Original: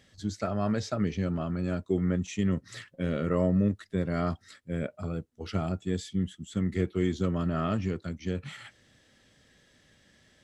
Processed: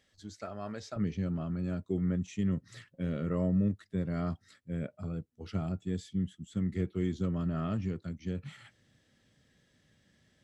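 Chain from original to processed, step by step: peaking EQ 140 Hz -7 dB 1.9 oct, from 0.96 s +7 dB; trim -8.5 dB

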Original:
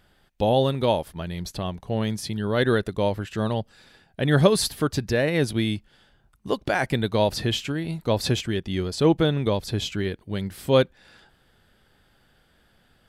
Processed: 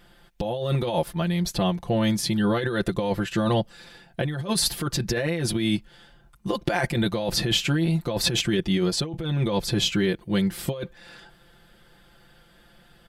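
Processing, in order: comb 5.8 ms, depth 89%; compressor with a negative ratio -24 dBFS, ratio -1

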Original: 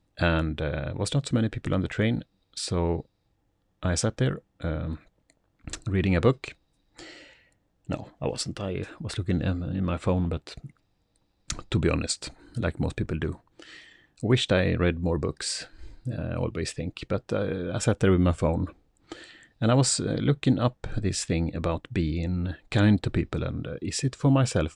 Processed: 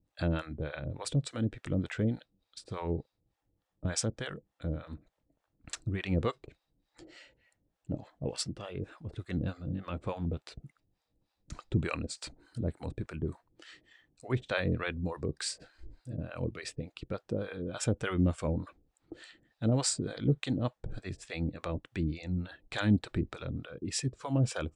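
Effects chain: harmonic tremolo 3.4 Hz, depth 100%, crossover 580 Hz; trim -3 dB

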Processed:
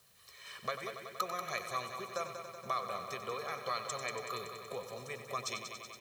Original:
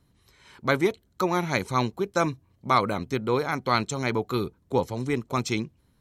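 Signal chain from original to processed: compression 6:1, threshold -37 dBFS, peak gain reduction 20 dB; comb 1.7 ms, depth 95%; added noise white -69 dBFS; high-pass 830 Hz 6 dB/octave; multi-head delay 94 ms, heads first and second, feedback 71%, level -11 dB; trim +1.5 dB

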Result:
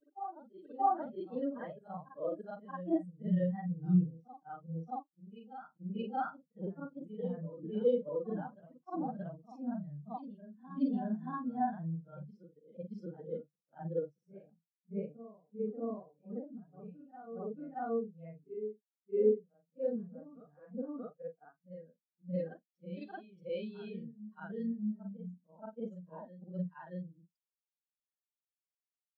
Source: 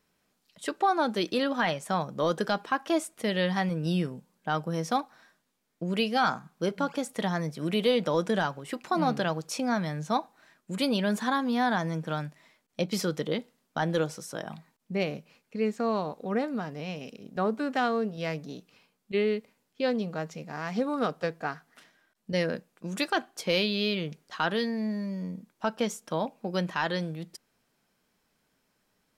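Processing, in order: short-time spectra conjugated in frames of 122 ms; reverse echo 627 ms -5 dB; spectral contrast expander 2.5:1; trim -2 dB

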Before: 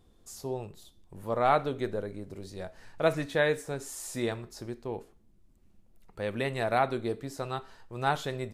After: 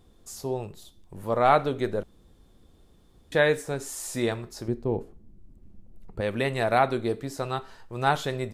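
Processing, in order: 2.03–3.32 s: room tone; 4.68–6.21 s: tilt shelf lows +8 dB, about 740 Hz; trim +4.5 dB

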